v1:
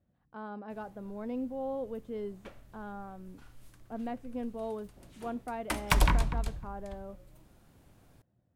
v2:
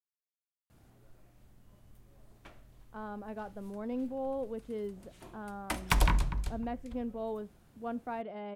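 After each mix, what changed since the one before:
speech: entry +2.60 s; reverb: off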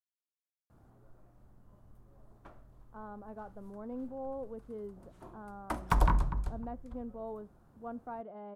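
speech -5.5 dB; master: add resonant high shelf 1.7 kHz -10.5 dB, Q 1.5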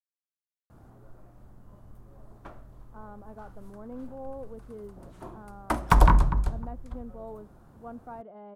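background +8.5 dB

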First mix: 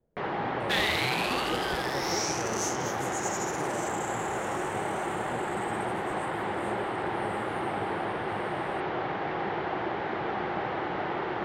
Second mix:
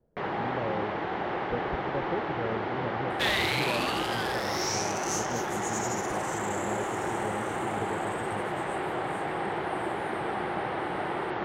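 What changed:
speech +4.0 dB; second sound: entry +2.50 s

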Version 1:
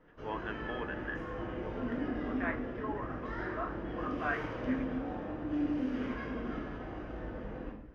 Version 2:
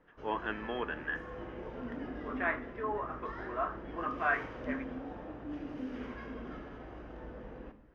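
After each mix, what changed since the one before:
speech +4.5 dB; background: send -11.0 dB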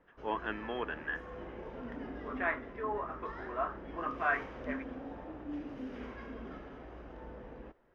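reverb: off

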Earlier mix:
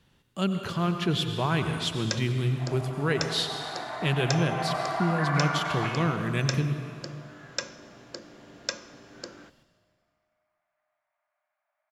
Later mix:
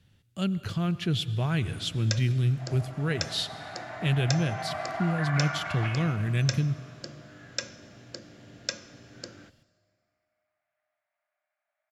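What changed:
speech: send -11.5 dB; master: add fifteen-band graphic EQ 100 Hz +12 dB, 400 Hz -4 dB, 1 kHz -9 dB

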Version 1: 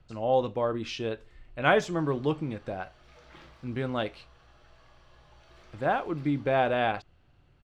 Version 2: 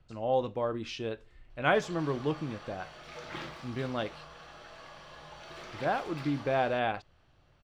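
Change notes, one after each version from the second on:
speech -3.5 dB; background +11.5 dB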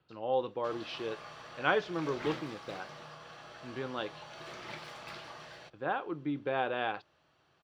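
speech: add cabinet simulation 210–4400 Hz, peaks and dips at 230 Hz -7 dB, 650 Hz -8 dB, 2.1 kHz -6 dB; background: entry -1.10 s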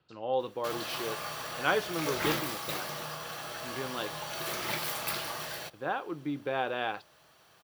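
background +8.5 dB; master: remove distance through air 120 m

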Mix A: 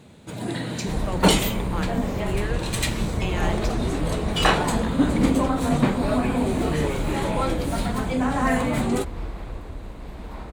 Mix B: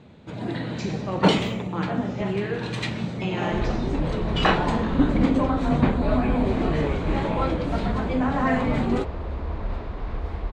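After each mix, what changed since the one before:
speech: send +9.5 dB; second sound: entry +2.65 s; master: add distance through air 170 m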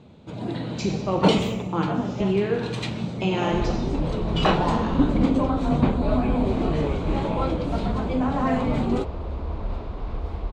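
speech +5.5 dB; master: add peaking EQ 1.8 kHz -8 dB 0.61 oct

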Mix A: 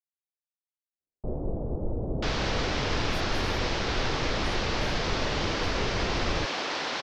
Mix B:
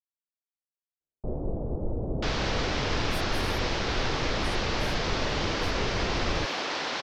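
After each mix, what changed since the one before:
speech +9.0 dB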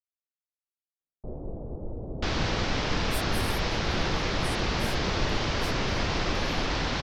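speech +8.0 dB; first sound -5.5 dB; second sound: remove high-pass 390 Hz 12 dB/octave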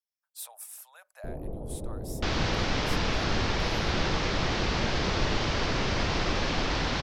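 speech: entry -2.75 s

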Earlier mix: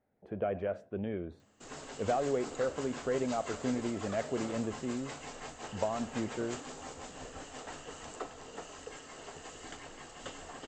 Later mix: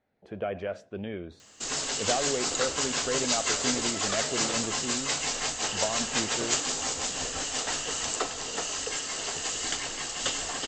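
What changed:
background +7.5 dB; master: add peaking EQ 5.4 kHz +15 dB 2.4 oct

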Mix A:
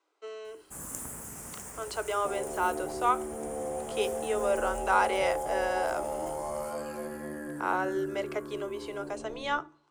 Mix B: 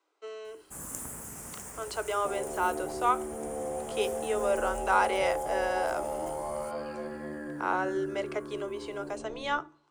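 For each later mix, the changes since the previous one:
second sound: add brick-wall FIR low-pass 5.1 kHz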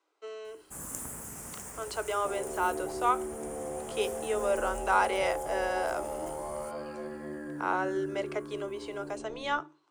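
reverb: off

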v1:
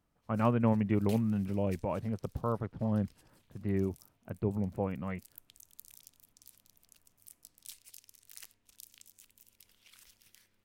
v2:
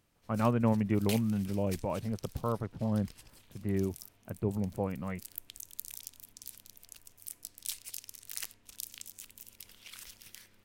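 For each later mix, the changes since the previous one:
background +10.5 dB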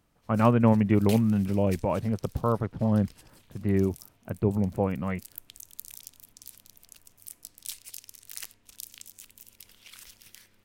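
speech +7.0 dB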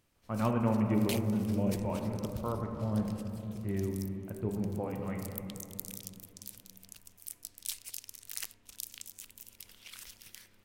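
speech -11.5 dB; reverb: on, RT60 2.9 s

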